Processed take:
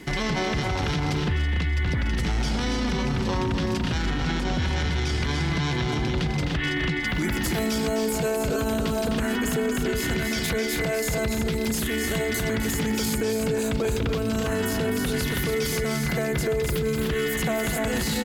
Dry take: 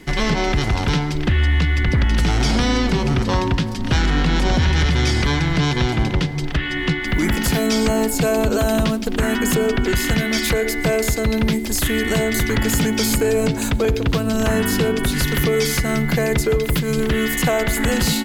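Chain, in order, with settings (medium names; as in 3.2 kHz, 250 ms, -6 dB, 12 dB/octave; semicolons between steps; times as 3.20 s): high-pass 43 Hz; loudspeakers at several distances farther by 88 m -9 dB, 99 m -7 dB; peak limiter -17.5 dBFS, peak gain reduction 12.5 dB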